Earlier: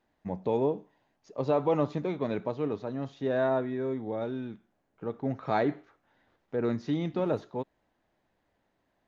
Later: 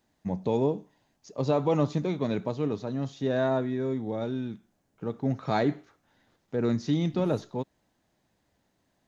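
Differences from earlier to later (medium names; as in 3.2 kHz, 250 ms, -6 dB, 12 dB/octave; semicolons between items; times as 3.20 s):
first voice: add high-pass 140 Hz 6 dB/octave; master: add tone controls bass +10 dB, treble +14 dB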